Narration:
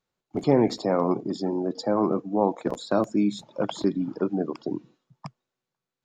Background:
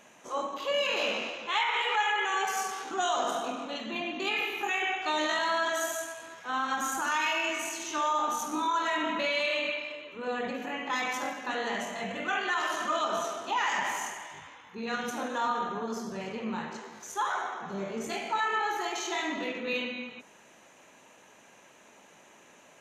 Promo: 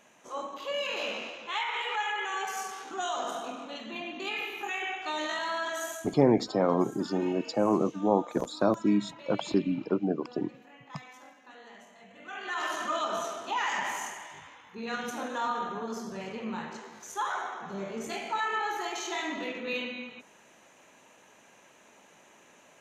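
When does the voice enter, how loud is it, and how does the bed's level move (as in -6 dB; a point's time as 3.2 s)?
5.70 s, -2.0 dB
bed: 5.93 s -4 dB
6.25 s -18.5 dB
12.1 s -18.5 dB
12.63 s -1.5 dB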